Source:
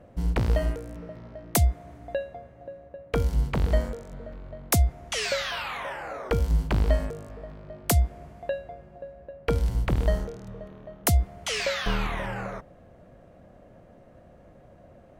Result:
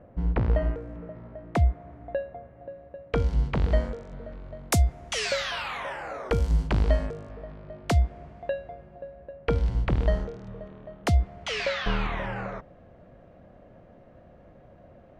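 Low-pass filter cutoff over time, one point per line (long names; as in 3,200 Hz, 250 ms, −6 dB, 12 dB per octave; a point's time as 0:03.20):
0:02.42 1,900 Hz
0:03.03 4,500 Hz
0:04.21 4,500 Hz
0:04.63 9,400 Hz
0:06.42 9,400 Hz
0:07.37 4,000 Hz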